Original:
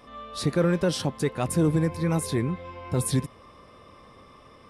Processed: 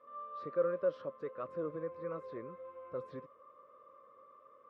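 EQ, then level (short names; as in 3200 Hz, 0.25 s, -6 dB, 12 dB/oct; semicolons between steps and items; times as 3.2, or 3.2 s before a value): double band-pass 800 Hz, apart 1.1 oct; air absorption 170 m; -3.0 dB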